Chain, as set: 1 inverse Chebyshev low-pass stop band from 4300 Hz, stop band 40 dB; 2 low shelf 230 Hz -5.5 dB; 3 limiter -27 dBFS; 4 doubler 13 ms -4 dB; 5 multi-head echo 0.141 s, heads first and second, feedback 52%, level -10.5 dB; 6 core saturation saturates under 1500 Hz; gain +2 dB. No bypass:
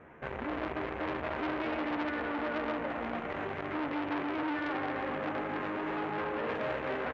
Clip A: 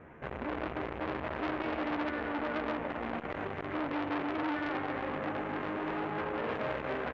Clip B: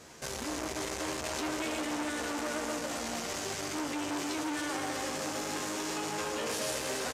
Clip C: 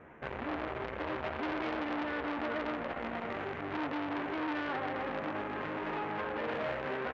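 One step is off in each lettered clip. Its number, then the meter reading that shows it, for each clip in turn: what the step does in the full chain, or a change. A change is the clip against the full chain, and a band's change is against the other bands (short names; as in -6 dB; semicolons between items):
2, 125 Hz band +2.0 dB; 1, 4 kHz band +11.5 dB; 5, loudness change -1.5 LU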